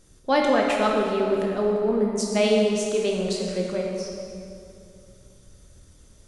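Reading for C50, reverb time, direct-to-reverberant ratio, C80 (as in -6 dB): 0.5 dB, 2.6 s, -1.0 dB, 2.0 dB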